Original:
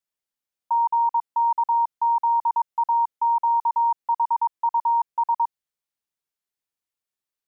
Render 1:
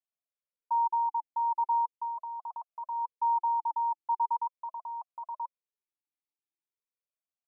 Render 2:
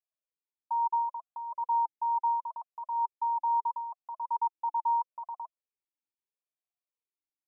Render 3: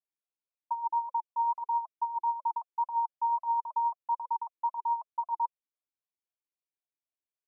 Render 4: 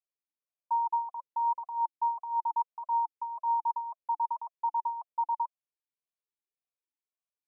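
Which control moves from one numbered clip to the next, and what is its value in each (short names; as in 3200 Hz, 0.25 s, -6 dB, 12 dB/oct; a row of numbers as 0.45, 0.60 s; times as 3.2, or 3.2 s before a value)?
vowel sweep, rate: 0.4, 0.75, 3.8, 1.8 Hz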